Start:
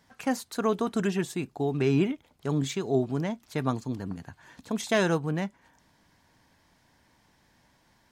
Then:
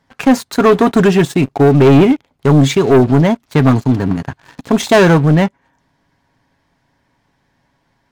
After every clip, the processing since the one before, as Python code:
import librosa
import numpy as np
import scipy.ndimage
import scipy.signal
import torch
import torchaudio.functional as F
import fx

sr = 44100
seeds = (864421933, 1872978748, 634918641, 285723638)

y = fx.high_shelf(x, sr, hz=4100.0, db=-10.5)
y = y + 0.31 * np.pad(y, (int(7.3 * sr / 1000.0), 0))[:len(y)]
y = fx.leveller(y, sr, passes=3)
y = y * librosa.db_to_amplitude(9.0)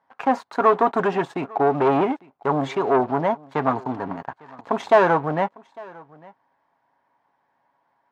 y = fx.bandpass_q(x, sr, hz=900.0, q=1.8)
y = y + 10.0 ** (-23.5 / 20.0) * np.pad(y, (int(852 * sr / 1000.0), 0))[:len(y)]